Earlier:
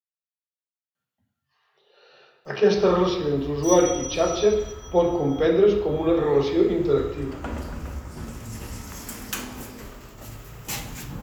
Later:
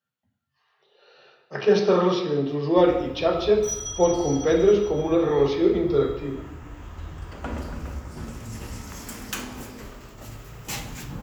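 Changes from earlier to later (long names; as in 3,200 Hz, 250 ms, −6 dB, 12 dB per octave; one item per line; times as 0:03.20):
speech: entry −0.95 s
master: add parametric band 13,000 Hz −5 dB 0.93 octaves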